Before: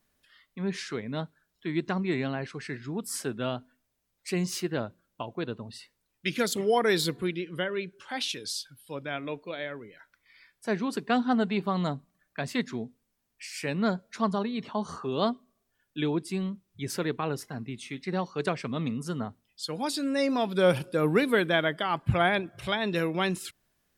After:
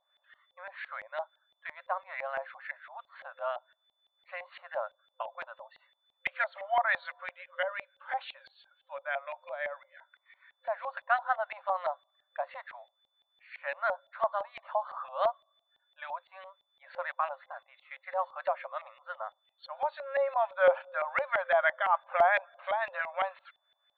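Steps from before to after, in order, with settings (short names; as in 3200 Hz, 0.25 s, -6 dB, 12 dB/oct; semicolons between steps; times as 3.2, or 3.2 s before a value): FFT band-pass 520–4500 Hz; whine 3500 Hz -56 dBFS; LFO low-pass saw up 5.9 Hz 730–2100 Hz; gain -2.5 dB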